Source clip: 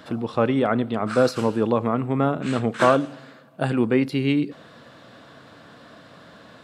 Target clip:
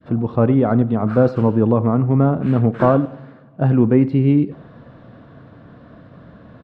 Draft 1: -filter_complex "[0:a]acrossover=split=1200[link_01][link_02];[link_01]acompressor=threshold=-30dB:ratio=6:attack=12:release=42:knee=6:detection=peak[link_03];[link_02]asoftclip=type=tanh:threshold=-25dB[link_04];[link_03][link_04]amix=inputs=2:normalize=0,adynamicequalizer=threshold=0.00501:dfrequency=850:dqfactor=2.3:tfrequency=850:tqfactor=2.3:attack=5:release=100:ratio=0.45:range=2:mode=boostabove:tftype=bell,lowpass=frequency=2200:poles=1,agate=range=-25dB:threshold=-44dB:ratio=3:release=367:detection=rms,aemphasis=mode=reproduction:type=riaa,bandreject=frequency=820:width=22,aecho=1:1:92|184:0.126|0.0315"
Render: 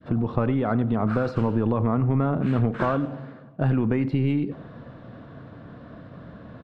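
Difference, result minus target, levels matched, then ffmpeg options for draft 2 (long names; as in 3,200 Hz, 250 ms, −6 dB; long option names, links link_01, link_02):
downward compressor: peak gain reduction +13 dB
-filter_complex "[0:a]acrossover=split=1200[link_01][link_02];[link_02]asoftclip=type=tanh:threshold=-25dB[link_03];[link_01][link_03]amix=inputs=2:normalize=0,adynamicequalizer=threshold=0.00501:dfrequency=850:dqfactor=2.3:tfrequency=850:tqfactor=2.3:attack=5:release=100:ratio=0.45:range=2:mode=boostabove:tftype=bell,lowpass=frequency=2200:poles=1,agate=range=-25dB:threshold=-44dB:ratio=3:release=367:detection=rms,aemphasis=mode=reproduction:type=riaa,bandreject=frequency=820:width=22,aecho=1:1:92|184:0.126|0.0315"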